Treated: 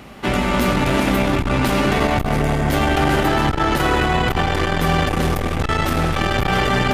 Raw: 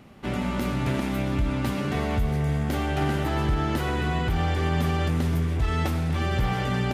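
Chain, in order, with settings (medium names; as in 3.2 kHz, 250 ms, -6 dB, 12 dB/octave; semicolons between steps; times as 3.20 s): octave divider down 2 oct, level -3 dB; bass shelf 290 Hz -9.5 dB; on a send: tape echo 190 ms, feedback 84%, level -6.5 dB, low-pass 2.4 kHz; on the sum: loudness maximiser +19.5 dB; transformer saturation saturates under 150 Hz; trim -5.5 dB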